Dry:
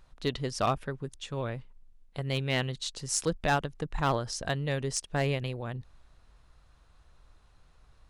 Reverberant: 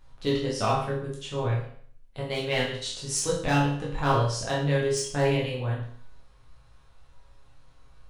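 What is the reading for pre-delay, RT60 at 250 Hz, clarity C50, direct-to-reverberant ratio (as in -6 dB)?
7 ms, 0.55 s, 4.0 dB, -6.0 dB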